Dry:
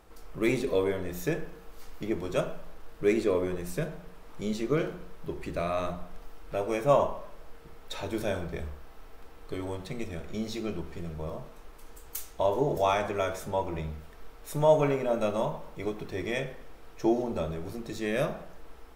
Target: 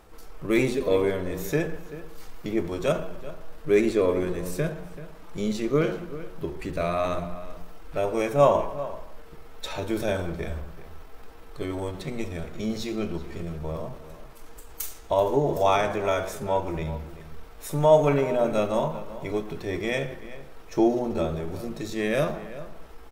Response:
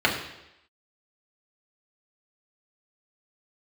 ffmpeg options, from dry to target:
-filter_complex "[0:a]atempo=0.82,asplit=2[link_01][link_02];[link_02]adelay=384.8,volume=-15dB,highshelf=frequency=4000:gain=-8.66[link_03];[link_01][link_03]amix=inputs=2:normalize=0,volume=4dB"

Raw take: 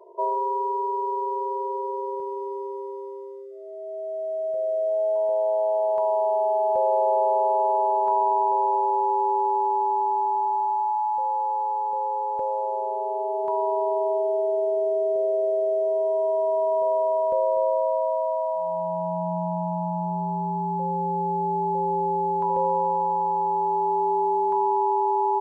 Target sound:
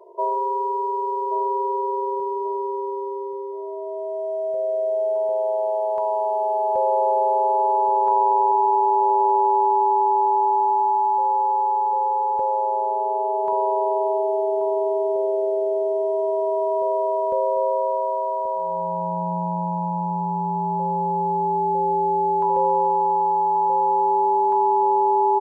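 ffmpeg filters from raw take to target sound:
ffmpeg -i in.wav -filter_complex "[0:a]asplit=2[link_01][link_02];[link_02]adelay=1131,lowpass=frequency=950:poles=1,volume=-7dB,asplit=2[link_03][link_04];[link_04]adelay=1131,lowpass=frequency=950:poles=1,volume=0.34,asplit=2[link_05][link_06];[link_06]adelay=1131,lowpass=frequency=950:poles=1,volume=0.34,asplit=2[link_07][link_08];[link_08]adelay=1131,lowpass=frequency=950:poles=1,volume=0.34[link_09];[link_01][link_03][link_05][link_07][link_09]amix=inputs=5:normalize=0,volume=2dB" out.wav

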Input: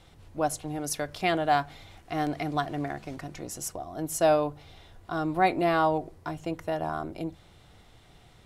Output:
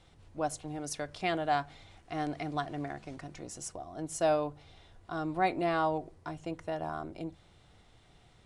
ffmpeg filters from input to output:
ffmpeg -i in.wav -af "aresample=22050,aresample=44100,volume=-5.5dB" out.wav

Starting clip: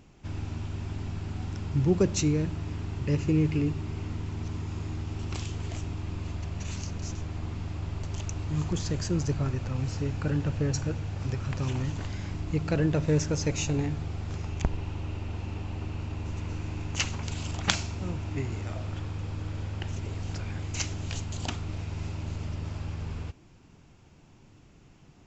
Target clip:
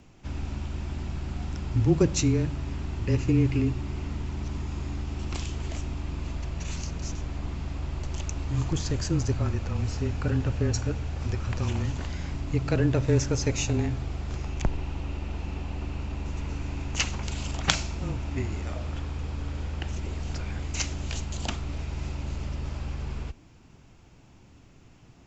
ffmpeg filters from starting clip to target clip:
ffmpeg -i in.wav -af "afreqshift=-23,volume=2dB" out.wav

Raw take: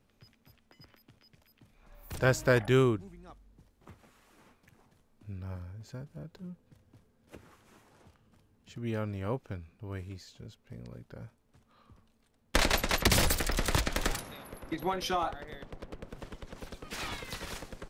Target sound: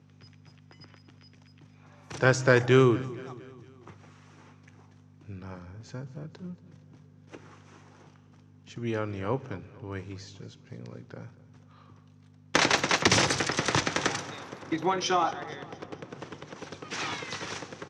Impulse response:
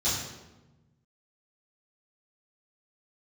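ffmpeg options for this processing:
-filter_complex "[0:a]aeval=exprs='val(0)+0.00224*(sin(2*PI*50*n/s)+sin(2*PI*2*50*n/s)/2+sin(2*PI*3*50*n/s)/3+sin(2*PI*4*50*n/s)/4+sin(2*PI*5*50*n/s)/5)':channel_layout=same,highpass=frequency=130:width=0.5412,highpass=frequency=130:width=1.3066,equalizer=frequency=210:width_type=q:width=4:gain=-9,equalizer=frequency=610:width_type=q:width=4:gain=-6,equalizer=frequency=5900:width_type=q:width=4:gain=9,lowpass=frequency=8100:width=0.5412,lowpass=frequency=8100:width=1.3066,acontrast=84,aemphasis=mode=reproduction:type=50kf,aecho=1:1:232|464|696|928:0.112|0.0595|0.0315|0.0167,asplit=2[link_01][link_02];[1:a]atrim=start_sample=2205[link_03];[link_02][link_03]afir=irnorm=-1:irlink=0,volume=-28.5dB[link_04];[link_01][link_04]amix=inputs=2:normalize=0"

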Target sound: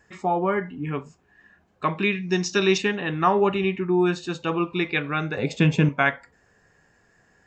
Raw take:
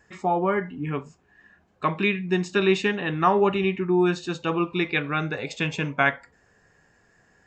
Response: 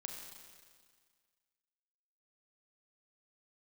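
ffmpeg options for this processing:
-filter_complex "[0:a]asettb=1/sr,asplit=3[link_01][link_02][link_03];[link_01]atrim=end=2.124[link_04];[link_02]atrim=start=2.12:end=2.78,asetpts=PTS-STARTPTS,afade=type=in:duration=0.004:curve=qsin,afade=type=out:start_time=0.656:duration=0.004:curve=qsin,lowpass=frequency=5800:width_type=q:width=8.5[link_05];[link_03]atrim=start=2.776[link_06];[link_04][link_05]acrossfade=duration=0.004:curve1=hsin:curve2=qsin[link_07];[link_07][link_06]acrossfade=duration=0.004:curve1=qsin:curve2=hsin,asettb=1/sr,asplit=3[link_08][link_09][link_10];[link_08]atrim=end=5.374[link_11];[link_09]atrim=start=5.37:end=5.89,asetpts=PTS-STARTPTS,afade=type=in:duration=0.004:curve=qsin,afade=type=out:start_time=0.516:duration=0.004:curve=qsin,equalizer=frequency=170:width=0.38:gain=11[link_12];[link_10]atrim=start=5.886[link_13];[link_11][link_12]acrossfade=duration=0.004:curve1=hsin:curve2=qsin[link_14];[link_14][link_13]acrossfade=duration=0.004:curve1=qsin:curve2=hsin"

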